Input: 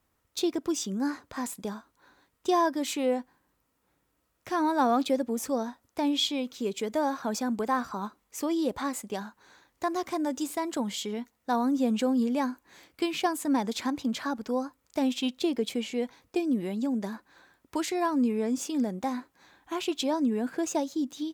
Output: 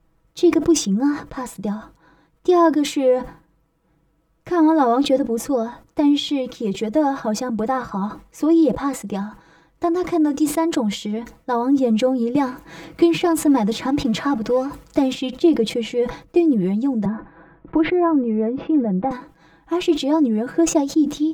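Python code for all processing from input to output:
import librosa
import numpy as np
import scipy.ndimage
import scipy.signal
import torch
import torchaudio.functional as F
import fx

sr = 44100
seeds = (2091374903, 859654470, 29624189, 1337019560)

y = fx.chain(x, sr, fx.law_mismatch(coded='mu'),
    fx.highpass(hz=46.0, slope=12),
    fx.band_squash(depth_pct=40), at=(12.35, 15.15))
y = fx.chain(y, sr, fx.gaussian_blur(sigma=3.7),
    fx.band_squash(depth_pct=40), at=(17.05, 19.11))
y = fx.tilt_eq(y, sr, slope=-3.0)
y = y + 0.8 * np.pad(y, (int(6.1 * sr / 1000.0), 0))[:len(y)]
y = fx.sustainer(y, sr, db_per_s=140.0)
y = F.gain(torch.from_numpy(y), 4.0).numpy()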